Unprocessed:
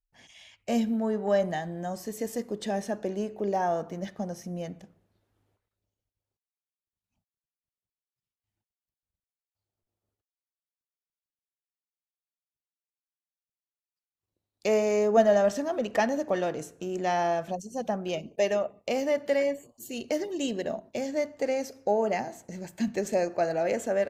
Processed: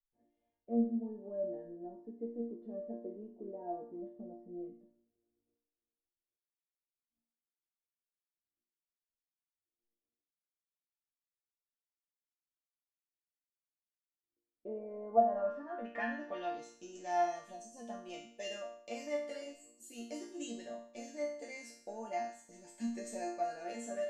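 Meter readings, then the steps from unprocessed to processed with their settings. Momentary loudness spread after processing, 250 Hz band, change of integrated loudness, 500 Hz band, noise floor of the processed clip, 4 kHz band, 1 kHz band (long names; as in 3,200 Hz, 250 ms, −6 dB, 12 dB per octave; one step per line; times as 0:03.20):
14 LU, −10.0 dB, −11.0 dB, −12.5 dB, below −85 dBFS, −12.5 dB, −7.5 dB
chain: low-pass filter sweep 410 Hz → 8,900 Hz, 0:14.69–0:17.13
resonators tuned to a chord A#3 major, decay 0.57 s
level +7.5 dB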